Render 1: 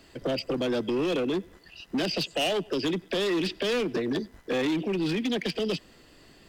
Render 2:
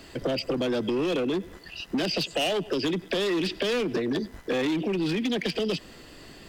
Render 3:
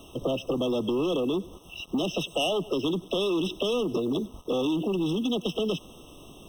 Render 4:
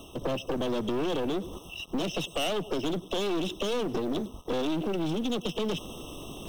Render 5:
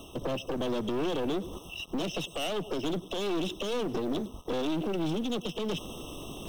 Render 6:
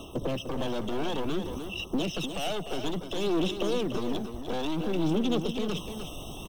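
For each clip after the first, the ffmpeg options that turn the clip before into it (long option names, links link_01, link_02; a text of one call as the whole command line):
ffmpeg -i in.wav -filter_complex "[0:a]asplit=2[link_01][link_02];[link_02]alimiter=level_in=8dB:limit=-24dB:level=0:latency=1:release=23,volume=-8dB,volume=1dB[link_03];[link_01][link_03]amix=inputs=2:normalize=0,acompressor=threshold=-25dB:ratio=6,volume=1dB" out.wav
ffmpeg -i in.wav -af "acrusher=bits=7:mix=0:aa=0.5,afftfilt=real='re*eq(mod(floor(b*sr/1024/1300),2),0)':imag='im*eq(mod(floor(b*sr/1024/1300),2),0)':win_size=1024:overlap=0.75" out.wav
ffmpeg -i in.wav -af "areverse,acompressor=mode=upward:threshold=-32dB:ratio=2.5,areverse,aeval=exprs='clip(val(0),-1,0.02)':channel_layout=same" out.wav
ffmpeg -i in.wav -af "alimiter=limit=-22dB:level=0:latency=1:release=228" out.wav
ffmpeg -i in.wav -af "aphaser=in_gain=1:out_gain=1:delay=1.4:decay=0.4:speed=0.57:type=sinusoidal,aecho=1:1:300:0.376" out.wav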